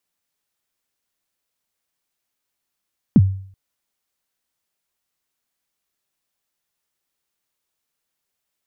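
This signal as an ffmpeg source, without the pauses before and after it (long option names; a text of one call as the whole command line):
ffmpeg -f lavfi -i "aevalsrc='0.596*pow(10,-3*t/0.54)*sin(2*PI*(270*0.042/log(96/270)*(exp(log(96/270)*min(t,0.042)/0.042)-1)+96*max(t-0.042,0)))':duration=0.38:sample_rate=44100" out.wav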